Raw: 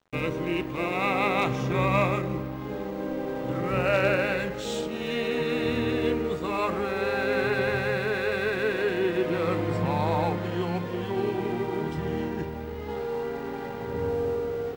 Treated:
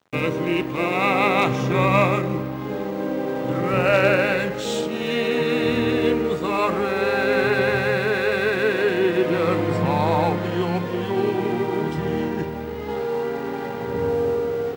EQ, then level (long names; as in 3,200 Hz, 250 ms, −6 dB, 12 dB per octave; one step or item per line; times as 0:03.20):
high-pass filter 99 Hz 12 dB per octave
+6.0 dB